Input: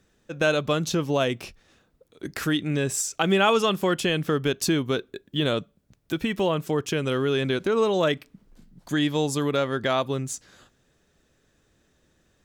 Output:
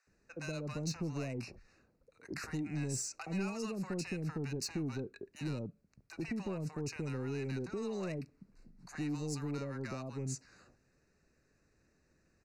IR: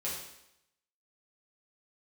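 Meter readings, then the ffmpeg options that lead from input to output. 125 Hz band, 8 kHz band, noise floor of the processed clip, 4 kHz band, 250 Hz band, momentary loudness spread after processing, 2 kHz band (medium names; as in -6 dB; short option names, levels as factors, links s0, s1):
-9.5 dB, -11.5 dB, -74 dBFS, -20.0 dB, -12.5 dB, 8 LU, -18.0 dB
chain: -filter_complex "[0:a]lowpass=6700,acrossover=split=270|3500[s0][s1][s2];[s1]acompressor=threshold=0.0224:ratio=6[s3];[s0][s3][s2]amix=inputs=3:normalize=0,asoftclip=type=tanh:threshold=0.0631,asuperstop=centerf=3300:order=8:qfactor=2.9,acrossover=split=780[s4][s5];[s4]adelay=70[s6];[s6][s5]amix=inputs=2:normalize=0,volume=0.473"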